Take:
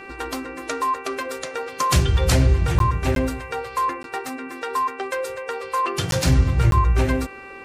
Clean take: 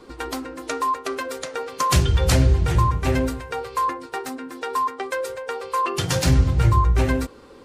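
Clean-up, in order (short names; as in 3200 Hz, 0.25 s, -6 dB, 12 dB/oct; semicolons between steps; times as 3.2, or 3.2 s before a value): clip repair -7.5 dBFS; de-hum 390 Hz, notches 7; interpolate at 2.79/3.15/4.03/6.11/6.71, 12 ms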